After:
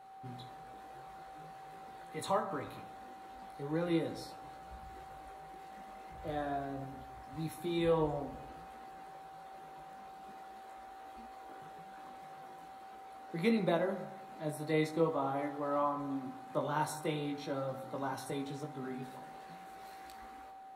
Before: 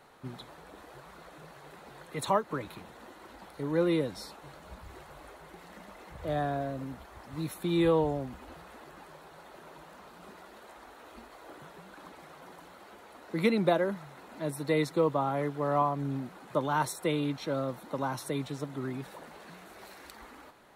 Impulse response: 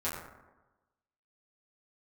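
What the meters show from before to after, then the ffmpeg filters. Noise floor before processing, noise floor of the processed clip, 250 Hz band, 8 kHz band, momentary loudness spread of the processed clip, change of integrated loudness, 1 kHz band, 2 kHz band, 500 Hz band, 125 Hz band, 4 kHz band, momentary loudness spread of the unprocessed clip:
-53 dBFS, -51 dBFS, -5.0 dB, -6.0 dB, 18 LU, -5.5 dB, -4.0 dB, -5.5 dB, -5.0 dB, -6.5 dB, -5.5 dB, 23 LU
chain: -filter_complex "[0:a]flanger=delay=17:depth=2.9:speed=0.45,aeval=exprs='val(0)+0.00355*sin(2*PI*770*n/s)':c=same,asplit=2[a][b];[1:a]atrim=start_sample=2205,adelay=36[c];[b][c]afir=irnorm=-1:irlink=0,volume=-14dB[d];[a][d]amix=inputs=2:normalize=0,volume=-3dB"

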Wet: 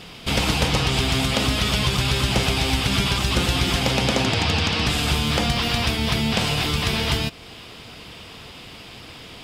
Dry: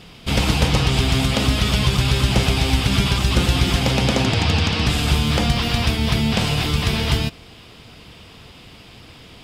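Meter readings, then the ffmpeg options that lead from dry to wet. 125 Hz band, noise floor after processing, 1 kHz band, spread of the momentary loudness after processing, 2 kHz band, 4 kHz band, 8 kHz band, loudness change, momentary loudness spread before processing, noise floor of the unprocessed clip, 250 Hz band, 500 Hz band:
-5.0 dB, -41 dBFS, -0.5 dB, 19 LU, 0.0 dB, 0.0 dB, 0.0 dB, -2.0 dB, 2 LU, -44 dBFS, -3.0 dB, -1.0 dB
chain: -filter_complex "[0:a]lowshelf=f=240:g=-6,asplit=2[a][b];[b]acompressor=threshold=-31dB:ratio=6,volume=0.5dB[c];[a][c]amix=inputs=2:normalize=0,volume=-2dB"

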